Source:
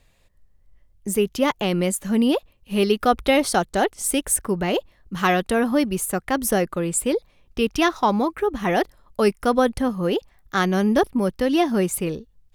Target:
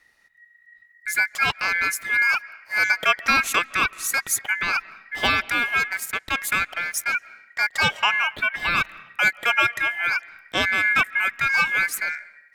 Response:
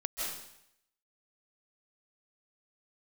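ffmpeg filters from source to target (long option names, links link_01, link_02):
-filter_complex "[0:a]asettb=1/sr,asplit=3[link_01][link_02][link_03];[link_01]atrim=end=5.414[link_04];[link_02]atrim=start=5.41:end=7.15,asetpts=PTS-STARTPTS,afade=type=in:duration=0.004:curve=qsin,afade=type=out:start_time=1.736:duration=0.004:curve=qsin,aeval=exprs='sgn(val(0))*max(abs(val(0))-0.0188,0)':channel_layout=same[link_05];[link_03]atrim=start=7.146[link_06];[link_04][link_05]acrossfade=duration=0.004:curve1=hsin:curve2=qsin[link_07];[link_07][link_06]acrossfade=duration=0.004:curve1=qsin:curve2=hsin,aeval=exprs='val(0)*sin(2*PI*1900*n/s)':channel_layout=same,asplit=2[link_08][link_09];[1:a]atrim=start_sample=2205,lowpass=3200[link_10];[link_09][link_10]afir=irnorm=-1:irlink=0,volume=-22dB[link_11];[link_08][link_11]amix=inputs=2:normalize=0,volume=1dB"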